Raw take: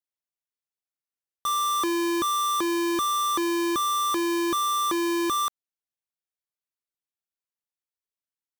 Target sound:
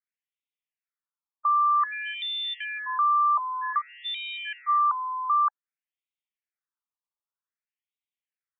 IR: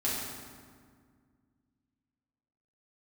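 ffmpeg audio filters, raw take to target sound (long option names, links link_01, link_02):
-af "asuperstop=centerf=720:order=4:qfactor=4.7,afftfilt=real='re*between(b*sr/1024,880*pow(2800/880,0.5+0.5*sin(2*PI*0.53*pts/sr))/1.41,880*pow(2800/880,0.5+0.5*sin(2*PI*0.53*pts/sr))*1.41)':imag='im*between(b*sr/1024,880*pow(2800/880,0.5+0.5*sin(2*PI*0.53*pts/sr))/1.41,880*pow(2800/880,0.5+0.5*sin(2*PI*0.53*pts/sr))*1.41)':win_size=1024:overlap=0.75,volume=4.5dB"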